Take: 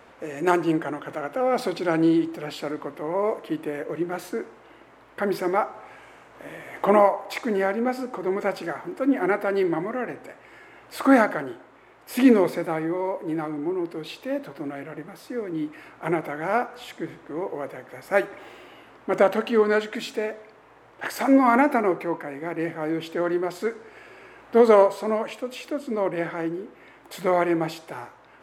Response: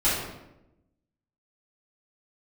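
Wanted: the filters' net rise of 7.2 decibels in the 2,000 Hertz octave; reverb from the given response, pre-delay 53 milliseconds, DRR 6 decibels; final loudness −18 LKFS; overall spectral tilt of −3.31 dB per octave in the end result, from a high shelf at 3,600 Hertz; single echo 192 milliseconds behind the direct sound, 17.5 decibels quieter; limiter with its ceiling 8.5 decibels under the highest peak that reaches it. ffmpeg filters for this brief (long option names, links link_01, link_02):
-filter_complex "[0:a]equalizer=frequency=2000:width_type=o:gain=7.5,highshelf=frequency=3600:gain=6.5,alimiter=limit=-11dB:level=0:latency=1,aecho=1:1:192:0.133,asplit=2[link_01][link_02];[1:a]atrim=start_sample=2205,adelay=53[link_03];[link_02][link_03]afir=irnorm=-1:irlink=0,volume=-20dB[link_04];[link_01][link_04]amix=inputs=2:normalize=0,volume=6.5dB"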